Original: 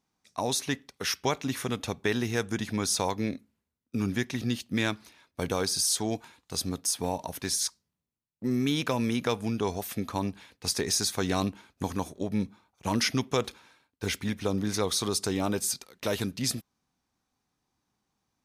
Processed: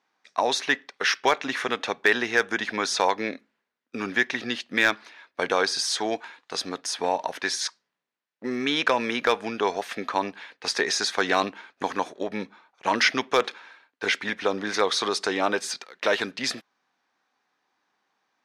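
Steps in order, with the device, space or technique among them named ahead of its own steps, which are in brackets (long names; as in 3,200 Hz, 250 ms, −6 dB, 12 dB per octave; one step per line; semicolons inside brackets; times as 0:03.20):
megaphone (band-pass filter 470–3,900 Hz; parametric band 1,700 Hz +6 dB 0.54 octaves; hard clipping −17.5 dBFS, distortion −24 dB)
level +8.5 dB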